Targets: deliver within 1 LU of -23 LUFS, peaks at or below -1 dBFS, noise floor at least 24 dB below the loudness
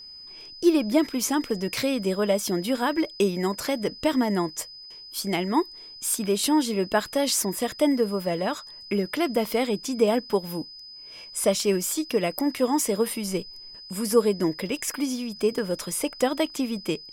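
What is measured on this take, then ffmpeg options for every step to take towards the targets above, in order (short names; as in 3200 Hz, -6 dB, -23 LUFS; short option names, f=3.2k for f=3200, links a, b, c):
steady tone 5000 Hz; tone level -41 dBFS; loudness -25.5 LUFS; peak -7.5 dBFS; loudness target -23.0 LUFS
-> -af "bandreject=f=5k:w=30"
-af "volume=2.5dB"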